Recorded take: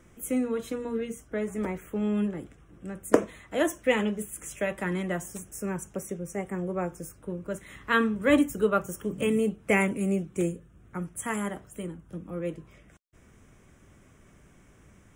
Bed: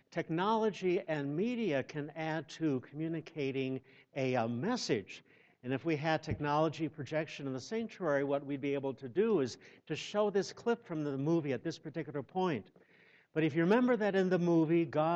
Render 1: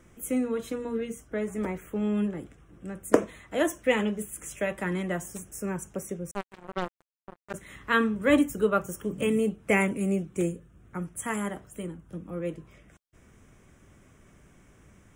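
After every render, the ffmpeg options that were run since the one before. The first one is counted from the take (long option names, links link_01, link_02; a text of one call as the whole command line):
ffmpeg -i in.wav -filter_complex "[0:a]asettb=1/sr,asplit=3[link_01][link_02][link_03];[link_01]atrim=end=6.314[link_04];[link_02]atrim=start=6.31:end=7.54,asetpts=PTS-STARTPTS,afade=type=in:duration=0.004:curve=qsin,afade=type=out:start_time=1.226:duration=0.004:curve=qsin,acrusher=bits=3:mix=0:aa=0.5[link_05];[link_03]atrim=start=7.536[link_06];[link_04][link_05]acrossfade=duration=0.004:curve1=hsin:curve2=qsin[link_07];[link_07][link_06]acrossfade=duration=0.004:curve1=qsin:curve2=hsin" out.wav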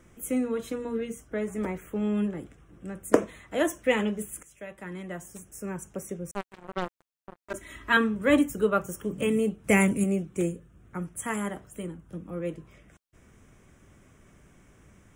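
ffmpeg -i in.wav -filter_complex "[0:a]asettb=1/sr,asplit=3[link_01][link_02][link_03];[link_01]atrim=end=7.424[link_04];[link_02]atrim=start=7.42:end=7.97,asetpts=PTS-STARTPTS,afade=type=in:duration=0.004:curve=qsin,afade=type=out:start_time=0.546:duration=0.004:curve=qsin,aecho=1:1:3.1:0.8,atrim=end_sample=24255[link_05];[link_03]atrim=start=7.966[link_06];[link_04][link_05]acrossfade=duration=0.004:curve1=hsin:curve2=qsin[link_07];[link_07][link_06]acrossfade=duration=0.004:curve1=qsin:curve2=hsin,asettb=1/sr,asplit=3[link_08][link_09][link_10];[link_08]atrim=end=9.644[link_11];[link_09]atrim=start=9.64:end=10.04,asetpts=PTS-STARTPTS,afade=type=in:duration=0.004:curve=qsin,afade=type=out:start_time=0.396:duration=0.004:curve=qsin,bass=frequency=250:gain=7,treble=frequency=4000:gain=8[link_12];[link_10]atrim=start=10.036[link_13];[link_11][link_12]acrossfade=duration=0.004:curve1=hsin:curve2=qsin[link_14];[link_14][link_13]acrossfade=duration=0.004:curve1=qsin:curve2=hsin,asplit=2[link_15][link_16];[link_15]atrim=end=4.43,asetpts=PTS-STARTPTS,afade=type=out:start_time=4.426:duration=0.004:curve=hsin:silence=0.149624[link_17];[link_16]atrim=start=4.43,asetpts=PTS-STARTPTS,afade=type=in:duration=1.92:silence=0.149624[link_18];[link_17][link_18]concat=n=2:v=0:a=1" out.wav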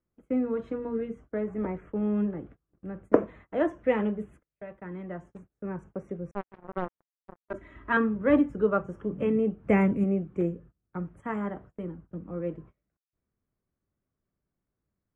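ffmpeg -i in.wav -af "lowpass=1400,agate=range=-28dB:threshold=-48dB:ratio=16:detection=peak" out.wav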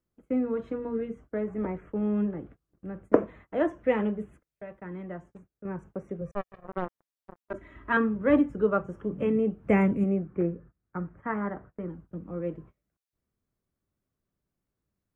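ffmpeg -i in.wav -filter_complex "[0:a]asettb=1/sr,asplit=3[link_01][link_02][link_03];[link_01]atrim=end=6.214[link_04];[link_02]atrim=start=6.21:end=6.66,asetpts=PTS-STARTPTS,afade=type=in:duration=0.004:curve=qsin,afade=type=out:start_time=0.446:duration=0.004:curve=qsin,aecho=1:1:1.7:0.82,atrim=end_sample=19845[link_05];[link_03]atrim=start=6.656[link_06];[link_04][link_05]acrossfade=duration=0.004:curve1=hsin:curve2=qsin[link_07];[link_07][link_06]acrossfade=duration=0.004:curve1=qsin:curve2=hsin,asettb=1/sr,asplit=3[link_08][link_09][link_10];[link_08]atrim=end=10.174[link_11];[link_09]atrim=start=10.17:end=11.89,asetpts=PTS-STARTPTS,afade=type=in:duration=0.004:curve=qsin,afade=type=out:start_time=1.716:duration=0.004:curve=qsin,lowpass=frequency=1700:width_type=q:width=1.6[link_12];[link_10]atrim=start=11.886[link_13];[link_11][link_12]acrossfade=duration=0.004:curve1=hsin:curve2=qsin[link_14];[link_14][link_13]acrossfade=duration=0.004:curve1=qsin:curve2=hsin,asplit=2[link_15][link_16];[link_15]atrim=end=5.65,asetpts=PTS-STARTPTS,afade=type=out:start_time=5.03:duration=0.62:silence=0.446684[link_17];[link_16]atrim=start=5.65,asetpts=PTS-STARTPTS,afade=type=in:duration=0.004:curve=hsin:silence=0.446684[link_18];[link_17][link_18]concat=n=2:v=0:a=1" out.wav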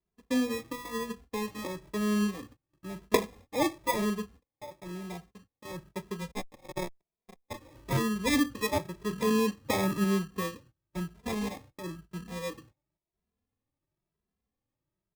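ffmpeg -i in.wav -filter_complex "[0:a]acrusher=samples=30:mix=1:aa=0.000001,asplit=2[link_01][link_02];[link_02]adelay=2.6,afreqshift=0.99[link_03];[link_01][link_03]amix=inputs=2:normalize=1" out.wav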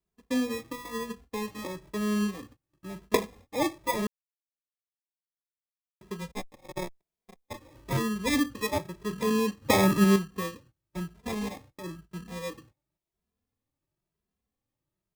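ffmpeg -i in.wav -filter_complex "[0:a]asplit=5[link_01][link_02][link_03][link_04][link_05];[link_01]atrim=end=4.07,asetpts=PTS-STARTPTS,afade=type=out:start_time=4.066:duration=0.004:curve=hsin[link_06];[link_02]atrim=start=4.07:end=6.01,asetpts=PTS-STARTPTS,volume=0[link_07];[link_03]atrim=start=6.01:end=9.622,asetpts=PTS-STARTPTS,afade=type=in:duration=0.004:curve=hsin[link_08];[link_04]atrim=start=9.618:end=10.162,asetpts=PTS-STARTPTS,volume=6.5dB[link_09];[link_05]atrim=start=10.158[link_10];[link_06][link_07][link_08]concat=n=3:v=0:a=1[link_11];[link_11][link_09]acrossfade=duration=0.004:curve1=hsin:curve2=hsin[link_12];[link_12][link_10]acrossfade=duration=0.004:curve1=hsin:curve2=hsin" out.wav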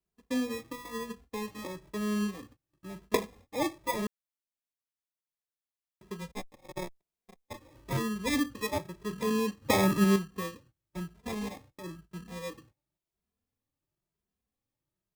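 ffmpeg -i in.wav -af "volume=-3dB" out.wav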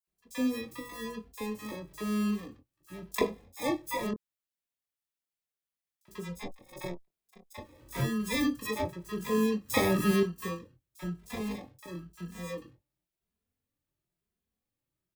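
ffmpeg -i in.wav -filter_complex "[0:a]asplit=2[link_01][link_02];[link_02]adelay=23,volume=-8dB[link_03];[link_01][link_03]amix=inputs=2:normalize=0,acrossover=split=880|5800[link_04][link_05][link_06];[link_05]adelay=40[link_07];[link_04]adelay=70[link_08];[link_08][link_07][link_06]amix=inputs=3:normalize=0" out.wav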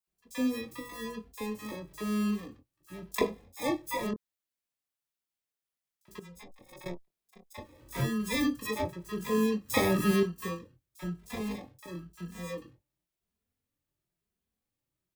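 ffmpeg -i in.wav -filter_complex "[0:a]asettb=1/sr,asplit=3[link_01][link_02][link_03];[link_01]atrim=end=6.194[link_04];[link_02]atrim=start=6.19:end=6.86,asetpts=PTS-STARTPTS,afade=type=in:duration=0.004:curve=qsin,afade=type=out:start_time=0.666:duration=0.004:curve=qsin,acompressor=threshold=-45dB:ratio=16:attack=3.2:release=140:knee=1:detection=peak[link_05];[link_03]atrim=start=6.856[link_06];[link_04][link_05]acrossfade=duration=0.004:curve1=hsin:curve2=qsin[link_07];[link_07][link_06]acrossfade=duration=0.004:curve1=qsin:curve2=hsin" out.wav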